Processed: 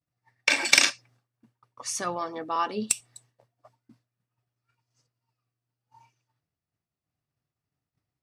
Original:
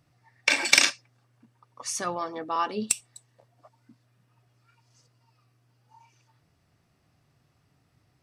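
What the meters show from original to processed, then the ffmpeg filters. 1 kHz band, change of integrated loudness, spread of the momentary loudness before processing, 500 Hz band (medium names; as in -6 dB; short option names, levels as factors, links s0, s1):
0.0 dB, 0.0 dB, 14 LU, 0.0 dB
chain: -af "agate=range=0.0224:threshold=0.002:ratio=3:detection=peak"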